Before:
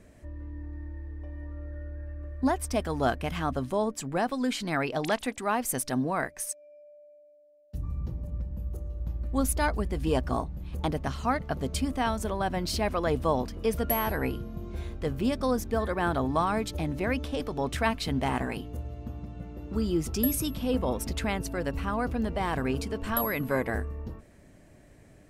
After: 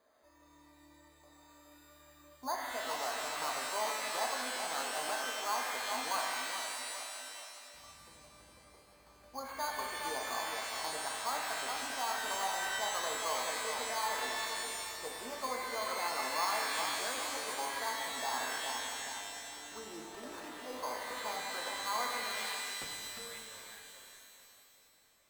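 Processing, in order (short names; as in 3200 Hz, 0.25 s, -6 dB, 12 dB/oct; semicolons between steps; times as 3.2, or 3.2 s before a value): tracing distortion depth 0.061 ms; Bessel low-pass 11000 Hz; bell 120 Hz -10 dB 2 oct; on a send: tape echo 0.414 s, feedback 54%, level -7 dB, low-pass 1600 Hz; on the sum: limiter -21 dBFS, peak gain reduction 8 dB; band-pass sweep 1000 Hz -> 6100 Hz, 22.2–22.78; careless resampling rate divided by 8×, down none, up hold; shimmer reverb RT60 2 s, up +12 st, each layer -2 dB, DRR 0.5 dB; gain -2 dB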